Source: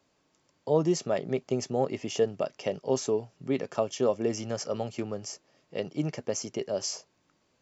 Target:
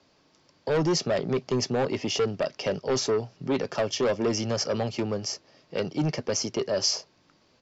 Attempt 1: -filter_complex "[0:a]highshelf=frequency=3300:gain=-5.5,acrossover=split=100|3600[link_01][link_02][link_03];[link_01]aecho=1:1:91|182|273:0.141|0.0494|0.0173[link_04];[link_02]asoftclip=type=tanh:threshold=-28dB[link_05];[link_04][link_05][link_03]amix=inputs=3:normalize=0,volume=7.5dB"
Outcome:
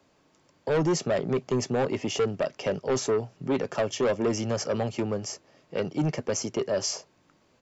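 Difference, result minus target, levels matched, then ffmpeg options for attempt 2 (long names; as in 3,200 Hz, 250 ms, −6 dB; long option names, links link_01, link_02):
4,000 Hz band −5.0 dB
-filter_complex "[0:a]lowpass=frequency=5000:width_type=q:width=2.4,highshelf=frequency=3300:gain=-5.5,acrossover=split=100|3600[link_01][link_02][link_03];[link_01]aecho=1:1:91|182|273:0.141|0.0494|0.0173[link_04];[link_02]asoftclip=type=tanh:threshold=-28dB[link_05];[link_04][link_05][link_03]amix=inputs=3:normalize=0,volume=7.5dB"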